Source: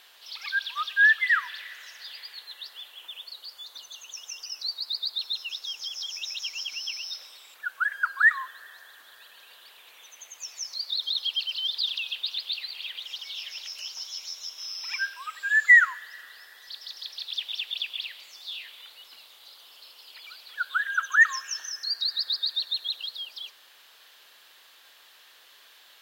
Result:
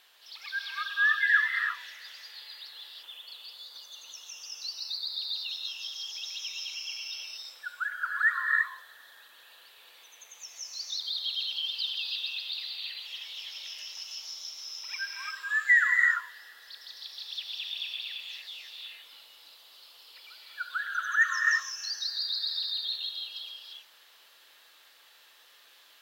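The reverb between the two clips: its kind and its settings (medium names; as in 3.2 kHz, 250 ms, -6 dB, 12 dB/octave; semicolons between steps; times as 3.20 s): gated-style reverb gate 370 ms rising, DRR -0.5 dB; trim -6.5 dB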